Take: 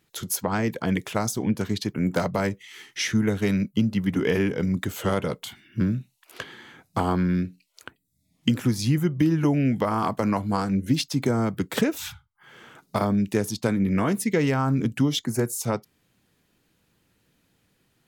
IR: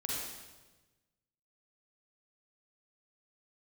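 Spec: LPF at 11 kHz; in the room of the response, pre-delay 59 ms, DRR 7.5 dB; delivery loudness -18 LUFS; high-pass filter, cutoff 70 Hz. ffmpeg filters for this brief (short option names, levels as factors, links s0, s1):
-filter_complex "[0:a]highpass=70,lowpass=11000,asplit=2[s0][s1];[1:a]atrim=start_sample=2205,adelay=59[s2];[s1][s2]afir=irnorm=-1:irlink=0,volume=0.299[s3];[s0][s3]amix=inputs=2:normalize=0,volume=2.11"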